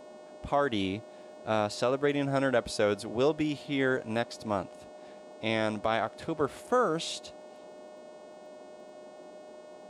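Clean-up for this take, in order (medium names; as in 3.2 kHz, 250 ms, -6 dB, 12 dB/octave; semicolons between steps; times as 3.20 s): de-click; de-hum 363.3 Hz, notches 25; band-stop 610 Hz, Q 30; noise print and reduce 26 dB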